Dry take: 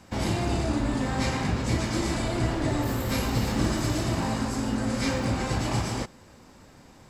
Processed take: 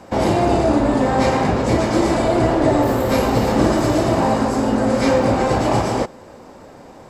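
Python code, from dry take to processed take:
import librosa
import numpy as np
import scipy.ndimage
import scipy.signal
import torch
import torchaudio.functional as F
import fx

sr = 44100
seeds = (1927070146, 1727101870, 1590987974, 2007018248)

y = fx.peak_eq(x, sr, hz=570.0, db=13.5, octaves=2.3)
y = y * 10.0 ** (3.0 / 20.0)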